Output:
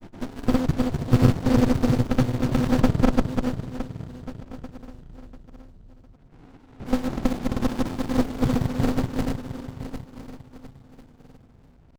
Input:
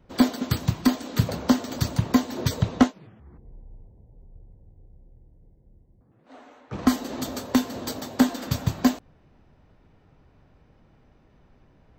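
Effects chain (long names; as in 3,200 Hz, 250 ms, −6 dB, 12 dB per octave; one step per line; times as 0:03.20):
feedback delay that plays each chunk backwards 174 ms, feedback 78%, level 0 dB
granular cloud, pitch spread up and down by 0 semitones
windowed peak hold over 65 samples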